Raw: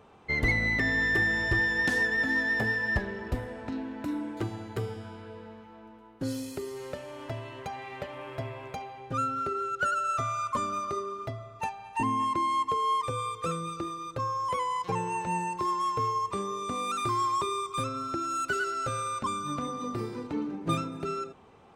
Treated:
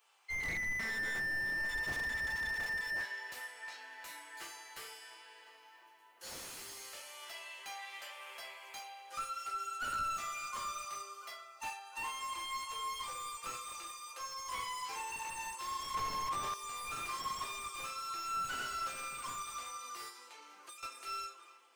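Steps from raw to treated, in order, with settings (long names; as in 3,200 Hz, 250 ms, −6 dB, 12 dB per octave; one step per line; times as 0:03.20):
high-pass filter 820 Hz 12 dB per octave
first difference
feedback echo with a low-pass in the loop 701 ms, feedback 84%, low-pass 1,300 Hz, level −15 dB
convolution reverb RT60 0.45 s, pre-delay 5 ms, DRR −4 dB
automatic gain control gain up to 4 dB
notch filter 3,700 Hz, Q 14
0:15.94–0:16.54: mid-hump overdrive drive 24 dB, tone 7,400 Hz, clips at −28 dBFS
0:20.09–0:20.83: downward compressor 16 to 1, threshold −50 dBFS, peak gain reduction 18 dB
slew-rate limiting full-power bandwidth 31 Hz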